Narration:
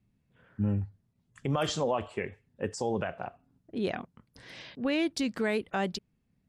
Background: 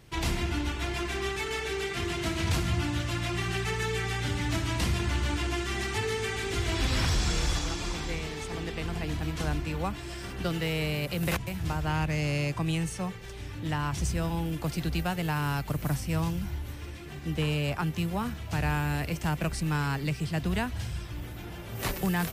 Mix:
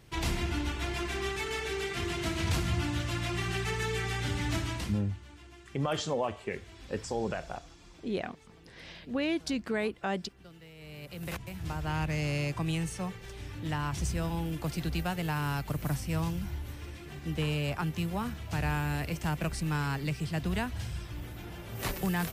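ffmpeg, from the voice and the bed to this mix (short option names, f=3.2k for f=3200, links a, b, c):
-filter_complex "[0:a]adelay=4300,volume=-2dB[a];[1:a]volume=17.5dB,afade=t=out:st=4.58:d=0.44:silence=0.1,afade=t=in:st=10.76:d=1.34:silence=0.105925[b];[a][b]amix=inputs=2:normalize=0"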